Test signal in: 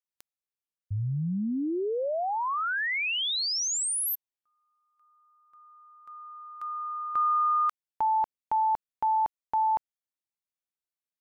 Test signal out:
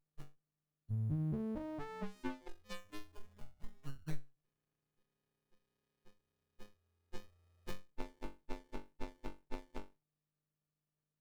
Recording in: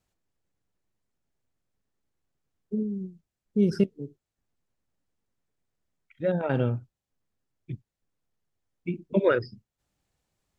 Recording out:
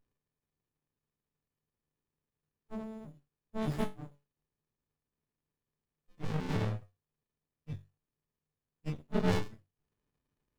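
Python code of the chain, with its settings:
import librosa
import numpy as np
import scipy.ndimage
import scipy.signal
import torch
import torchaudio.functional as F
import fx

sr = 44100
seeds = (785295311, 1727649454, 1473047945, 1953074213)

y = fx.freq_snap(x, sr, grid_st=6)
y = fx.room_flutter(y, sr, wall_m=3.6, rt60_s=0.26)
y = fx.running_max(y, sr, window=65)
y = y * librosa.db_to_amplitude(-4.0)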